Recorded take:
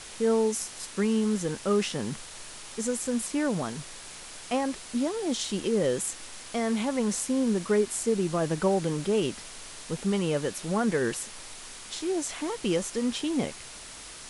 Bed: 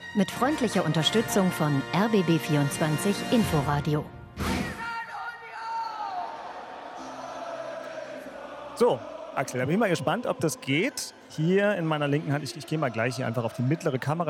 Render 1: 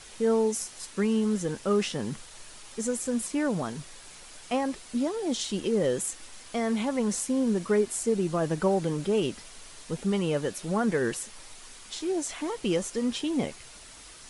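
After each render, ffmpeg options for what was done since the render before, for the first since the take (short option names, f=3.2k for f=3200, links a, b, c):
-af "afftdn=nr=6:nf=-44"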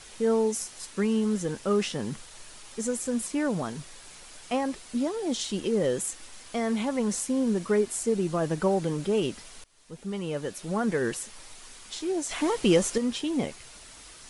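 -filter_complex "[0:a]asettb=1/sr,asplit=3[a][b][c];[a]atrim=end=12.314[d];[b]atrim=start=12.31:end=12.98,asetpts=PTS-STARTPTS,afade=t=in:d=0.004:c=qsin,afade=t=out:st=0.666:d=0.004:c=qsin,acontrast=55[e];[c]atrim=start=12.976[f];[d][e]acrossfade=d=0.004:c1=hsin:c2=qsin[g];[g][f]acrossfade=d=0.004:c1=qsin:c2=hsin,asplit=2[h][i];[h]atrim=end=9.64,asetpts=PTS-STARTPTS,afade=t=out:st=9.636:d=0.004:c=hsin:silence=0.0707946[j];[i]atrim=start=9.64,asetpts=PTS-STARTPTS,afade=t=in:d=1.73:c=qsin:silence=0.0707946[k];[j][k]concat=n=2:v=0:a=1"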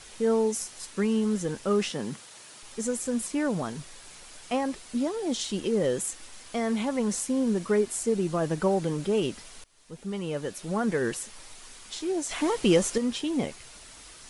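-filter_complex "[0:a]asettb=1/sr,asplit=3[a][b][c];[a]atrim=end=1.914[d];[b]atrim=start=1.91:end=2.63,asetpts=PTS-STARTPTS,afade=t=in:d=0.004:c=qsin,afade=t=out:st=0.716:d=0.004:c=qsin,highpass=140[e];[c]atrim=start=2.626[f];[d][e]acrossfade=d=0.004:c1=hsin:c2=qsin[g];[g][f]acrossfade=d=0.004:c1=qsin:c2=hsin"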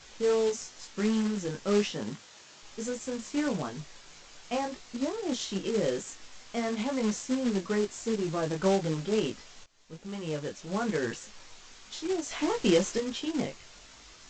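-af "flanger=delay=18.5:depth=2.4:speed=0.99,aresample=16000,acrusher=bits=3:mode=log:mix=0:aa=0.000001,aresample=44100"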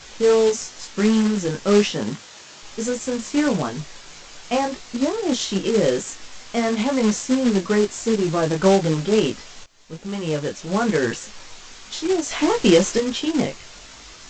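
-af "volume=10dB,alimiter=limit=-2dB:level=0:latency=1"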